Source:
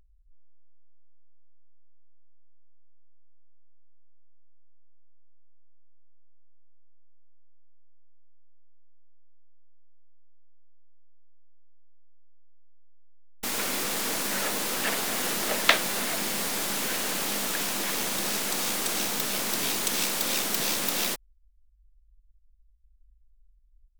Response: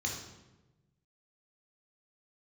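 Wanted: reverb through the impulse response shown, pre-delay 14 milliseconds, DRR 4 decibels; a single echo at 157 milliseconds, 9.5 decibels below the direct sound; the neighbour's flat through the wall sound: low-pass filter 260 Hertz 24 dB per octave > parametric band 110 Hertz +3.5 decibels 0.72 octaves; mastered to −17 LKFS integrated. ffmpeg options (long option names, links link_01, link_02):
-filter_complex "[0:a]aecho=1:1:157:0.335,asplit=2[link_01][link_02];[1:a]atrim=start_sample=2205,adelay=14[link_03];[link_02][link_03]afir=irnorm=-1:irlink=0,volume=-7.5dB[link_04];[link_01][link_04]amix=inputs=2:normalize=0,lowpass=frequency=260:width=0.5412,lowpass=frequency=260:width=1.3066,equalizer=frequency=110:width_type=o:width=0.72:gain=3.5,volume=24.5dB"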